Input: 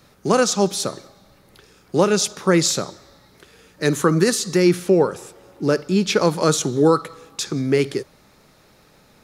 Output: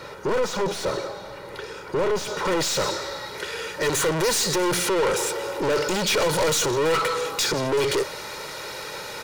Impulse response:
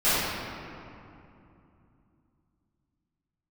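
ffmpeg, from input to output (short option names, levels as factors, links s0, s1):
-filter_complex "[0:a]aeval=exprs='(tanh(31.6*val(0)+0.35)-tanh(0.35))/31.6':c=same,aecho=1:1:2.1:0.63,asetnsamples=n=441:p=0,asendcmd='2.45 lowpass f 3500;3.93 lowpass f 7200',asplit=2[s0][s1];[s1]highpass=f=720:p=1,volume=12.6,asoftclip=type=tanh:threshold=0.0708[s2];[s0][s2]amix=inputs=2:normalize=0,lowpass=f=1200:p=1,volume=0.501,volume=2.11"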